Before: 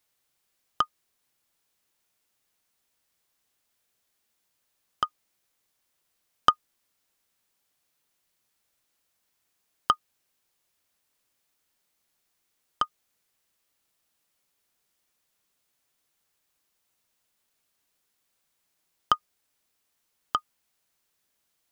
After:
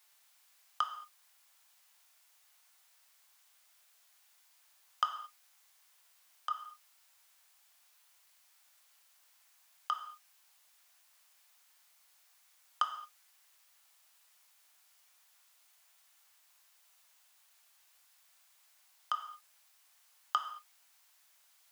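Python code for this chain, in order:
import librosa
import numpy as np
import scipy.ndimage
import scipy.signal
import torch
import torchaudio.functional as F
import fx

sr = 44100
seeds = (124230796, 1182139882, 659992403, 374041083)

y = scipy.signal.sosfilt(scipy.signal.butter(4, 710.0, 'highpass', fs=sr, output='sos'), x)
y = fx.over_compress(y, sr, threshold_db=-29.0, ratio=-1.0)
y = fx.rev_gated(y, sr, seeds[0], gate_ms=250, shape='falling', drr_db=5.0)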